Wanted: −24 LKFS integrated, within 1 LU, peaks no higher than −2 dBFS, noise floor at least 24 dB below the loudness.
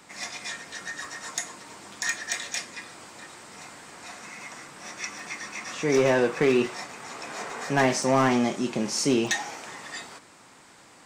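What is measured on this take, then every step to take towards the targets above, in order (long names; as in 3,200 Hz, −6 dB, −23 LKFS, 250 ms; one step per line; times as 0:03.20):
share of clipped samples 0.3%; peaks flattened at −14.5 dBFS; number of dropouts 6; longest dropout 1.1 ms; integrated loudness −27.0 LKFS; sample peak −14.5 dBFS; target loudness −24.0 LKFS
→ clipped peaks rebuilt −14.5 dBFS
repair the gap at 0:01.05/0:05.19/0:06.66/0:07.50/0:08.03/0:09.27, 1.1 ms
level +3 dB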